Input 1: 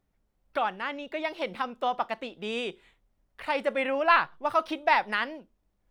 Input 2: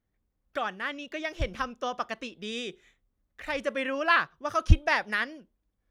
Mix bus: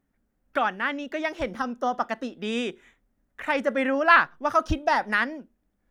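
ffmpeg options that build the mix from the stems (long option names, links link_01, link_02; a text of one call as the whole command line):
ffmpeg -i stem1.wav -i stem2.wav -filter_complex "[0:a]equalizer=frequency=250:width_type=o:width=0.67:gain=11,equalizer=frequency=1600:width_type=o:width=0.67:gain=7,equalizer=frequency=4000:width_type=o:width=0.67:gain=-12,volume=-2dB[link_01];[1:a]lowshelf=frequency=330:gain=-11,volume=-0.5dB[link_02];[link_01][link_02]amix=inputs=2:normalize=0" out.wav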